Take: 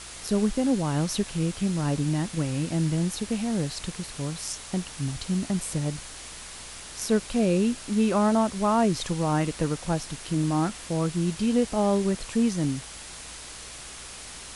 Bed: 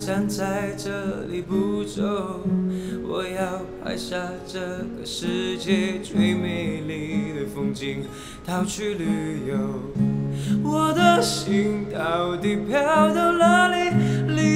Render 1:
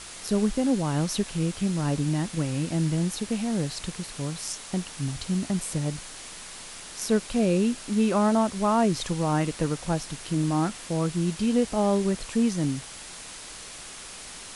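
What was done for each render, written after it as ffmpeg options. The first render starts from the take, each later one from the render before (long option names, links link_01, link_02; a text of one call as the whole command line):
ffmpeg -i in.wav -af "bandreject=frequency=60:width_type=h:width=4,bandreject=frequency=120:width_type=h:width=4" out.wav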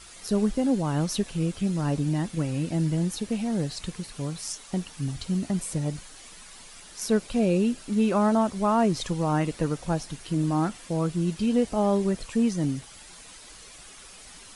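ffmpeg -i in.wav -af "afftdn=noise_reduction=9:noise_floor=-42" out.wav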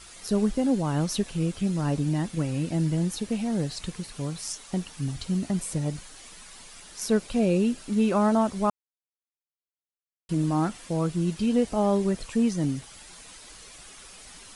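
ffmpeg -i in.wav -filter_complex "[0:a]asplit=3[link_01][link_02][link_03];[link_01]atrim=end=8.7,asetpts=PTS-STARTPTS,afade=type=out:start_time=8.696:duration=0.004:curve=hsin[link_04];[link_02]atrim=start=8.7:end=10.29,asetpts=PTS-STARTPTS,volume=0[link_05];[link_03]atrim=start=10.29,asetpts=PTS-STARTPTS,afade=type=in:duration=0.004:curve=hsin[link_06];[link_04][link_05][link_06]concat=n=3:v=0:a=1" out.wav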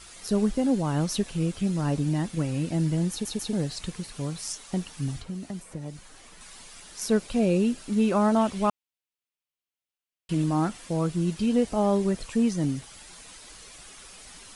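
ffmpeg -i in.wav -filter_complex "[0:a]asettb=1/sr,asplit=3[link_01][link_02][link_03];[link_01]atrim=end=5.194[link_04];[link_02]atrim=start=5.19:end=6.41,asetpts=PTS-STARTPTS,afade=type=in:duration=0.004:curve=qsin,afade=type=out:start_time=1.216:duration=0.004:curve=qsin,acrossover=split=220|2200[link_05][link_06][link_07];[link_05]acompressor=threshold=-40dB:ratio=4[link_08];[link_06]acompressor=threshold=-39dB:ratio=4[link_09];[link_07]acompressor=threshold=-52dB:ratio=4[link_10];[link_08][link_09][link_10]amix=inputs=3:normalize=0[link_11];[link_03]atrim=start=6.406[link_12];[link_04][link_11]acrossfade=duration=0.004:curve1=hsin:curve2=qsin[link_13];[link_13][link_12]acrossfade=duration=0.004:curve1=qsin:curve2=hsin,asettb=1/sr,asplit=3[link_14][link_15][link_16];[link_14]atrim=end=8.364[link_17];[link_15]atrim=start=8.36:end=10.44,asetpts=PTS-STARTPTS,afade=type=in:duration=0.004:curve=qsin,afade=type=out:start_time=2.076:duration=0.004:curve=qsin,equalizer=frequency=2800:width_type=o:width=0.87:gain=7.5[link_18];[link_16]atrim=start=10.436[link_19];[link_17][link_18]acrossfade=duration=0.004:curve1=hsin:curve2=qsin[link_20];[link_20][link_19]acrossfade=duration=0.004:curve1=qsin:curve2=hsin,asplit=4[link_21][link_22][link_23][link_24];[link_21]atrim=end=3.252[link_25];[link_22]atrim=start=3.108:end=3.252[link_26];[link_23]atrim=start=3.108:end=3.252[link_27];[link_24]atrim=start=3.528[link_28];[link_25][link_26]acrossfade=duration=0.004:curve1=hsin:curve2=hsin[link_29];[link_29][link_27]acrossfade=duration=0.004:curve1=hsin:curve2=hsin[link_30];[link_30][link_28]acrossfade=duration=0.004:curve1=hsin:curve2=hsin" out.wav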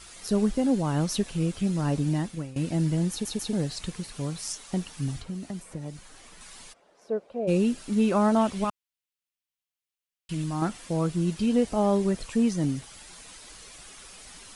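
ffmpeg -i in.wav -filter_complex "[0:a]asplit=3[link_01][link_02][link_03];[link_01]afade=type=out:start_time=6.72:duration=0.02[link_04];[link_02]bandpass=frequency=560:width_type=q:width=2.1,afade=type=in:start_time=6.72:duration=0.02,afade=type=out:start_time=7.47:duration=0.02[link_05];[link_03]afade=type=in:start_time=7.47:duration=0.02[link_06];[link_04][link_05][link_06]amix=inputs=3:normalize=0,asettb=1/sr,asplit=3[link_07][link_08][link_09];[link_07]atrim=end=8.644[link_10];[link_08]atrim=start=8.64:end=10.62,asetpts=PTS-STARTPTS,afade=type=in:duration=0.004:curve=qsin,afade=type=out:start_time=1.976:duration=0.004:curve=qsin,equalizer=frequency=430:width_type=o:width=2.5:gain=-9[link_11];[link_09]atrim=start=10.616[link_12];[link_10][link_11]acrossfade=duration=0.004:curve1=hsin:curve2=qsin[link_13];[link_13][link_12]acrossfade=duration=0.004:curve1=qsin:curve2=hsin,asplit=2[link_14][link_15];[link_14]atrim=end=2.56,asetpts=PTS-STARTPTS,afade=type=out:start_time=2.16:duration=0.4:silence=0.149624[link_16];[link_15]atrim=start=2.56,asetpts=PTS-STARTPTS,afade=type=in:duration=0.004:curve=hsin:silence=0.149624[link_17];[link_16][link_17]concat=n=2:v=0:a=1" out.wav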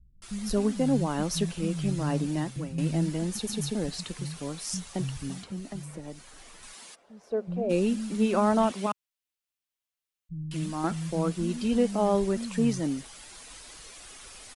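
ffmpeg -i in.wav -filter_complex "[0:a]acrossover=split=170[link_01][link_02];[link_02]adelay=220[link_03];[link_01][link_03]amix=inputs=2:normalize=0" out.wav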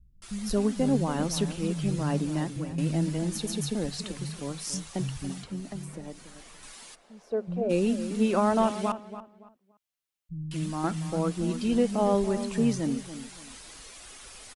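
ffmpeg -i in.wav -filter_complex "[0:a]asplit=2[link_01][link_02];[link_02]adelay=284,lowpass=frequency=2000:poles=1,volume=-12dB,asplit=2[link_03][link_04];[link_04]adelay=284,lowpass=frequency=2000:poles=1,volume=0.27,asplit=2[link_05][link_06];[link_06]adelay=284,lowpass=frequency=2000:poles=1,volume=0.27[link_07];[link_01][link_03][link_05][link_07]amix=inputs=4:normalize=0" out.wav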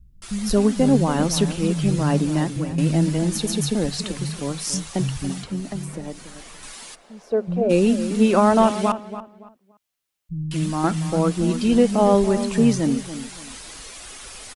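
ffmpeg -i in.wav -af "volume=8dB" out.wav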